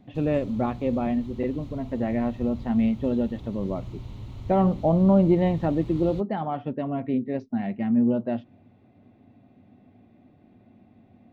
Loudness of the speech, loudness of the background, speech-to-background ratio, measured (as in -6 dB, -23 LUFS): -25.0 LUFS, -40.5 LUFS, 15.5 dB